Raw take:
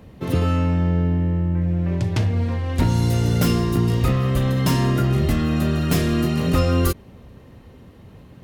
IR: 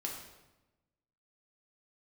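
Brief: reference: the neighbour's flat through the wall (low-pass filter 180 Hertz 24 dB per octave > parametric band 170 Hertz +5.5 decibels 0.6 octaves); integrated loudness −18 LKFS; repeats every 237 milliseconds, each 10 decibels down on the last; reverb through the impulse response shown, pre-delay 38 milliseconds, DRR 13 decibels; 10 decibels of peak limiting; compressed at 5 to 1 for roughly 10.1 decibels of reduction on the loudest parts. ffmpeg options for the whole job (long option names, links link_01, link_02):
-filter_complex "[0:a]acompressor=threshold=-26dB:ratio=5,alimiter=level_in=1dB:limit=-24dB:level=0:latency=1,volume=-1dB,aecho=1:1:237|474|711|948:0.316|0.101|0.0324|0.0104,asplit=2[link_01][link_02];[1:a]atrim=start_sample=2205,adelay=38[link_03];[link_02][link_03]afir=irnorm=-1:irlink=0,volume=-13.5dB[link_04];[link_01][link_04]amix=inputs=2:normalize=0,lowpass=frequency=180:width=0.5412,lowpass=frequency=180:width=1.3066,equalizer=frequency=170:width_type=o:width=0.6:gain=5.5,volume=14dB"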